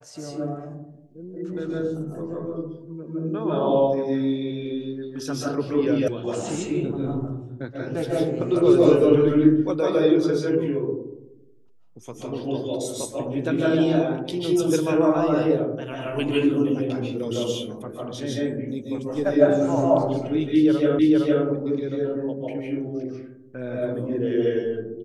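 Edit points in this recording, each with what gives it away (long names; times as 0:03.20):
0:06.08: cut off before it has died away
0:20.99: the same again, the last 0.46 s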